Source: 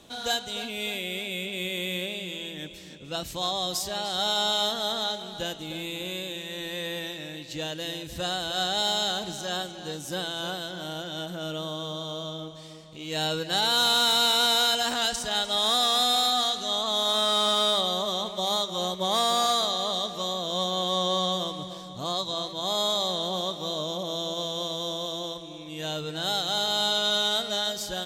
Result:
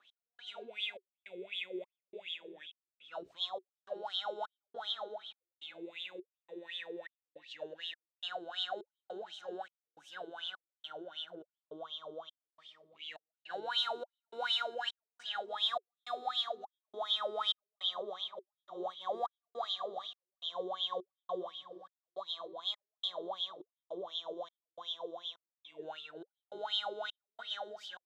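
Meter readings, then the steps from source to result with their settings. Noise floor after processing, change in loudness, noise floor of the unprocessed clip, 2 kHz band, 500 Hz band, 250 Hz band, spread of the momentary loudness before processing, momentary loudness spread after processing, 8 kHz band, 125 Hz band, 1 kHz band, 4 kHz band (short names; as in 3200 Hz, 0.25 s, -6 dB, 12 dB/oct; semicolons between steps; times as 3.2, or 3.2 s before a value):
under -85 dBFS, -13.5 dB, -41 dBFS, -13.0 dB, -12.0 dB, -17.0 dB, 13 LU, 17 LU, under -30 dB, under -30 dB, -13.0 dB, -13.5 dB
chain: step gate "x...xxxxx" 155 bpm -60 dB; wah 2.7 Hz 360–3400 Hz, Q 12; gain +3 dB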